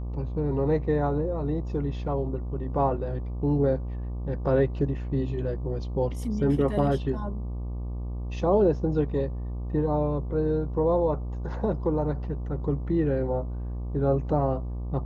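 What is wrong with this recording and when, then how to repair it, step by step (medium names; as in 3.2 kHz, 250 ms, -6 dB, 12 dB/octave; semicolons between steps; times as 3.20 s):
buzz 60 Hz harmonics 20 -32 dBFS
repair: de-hum 60 Hz, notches 20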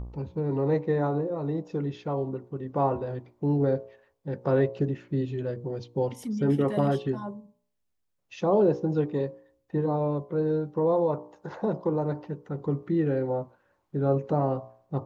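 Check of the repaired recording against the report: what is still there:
nothing left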